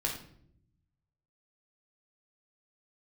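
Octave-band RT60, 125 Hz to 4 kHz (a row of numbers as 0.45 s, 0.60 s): 1.5 s, 1.2 s, 0.85 s, 0.55 s, 0.50 s, 0.45 s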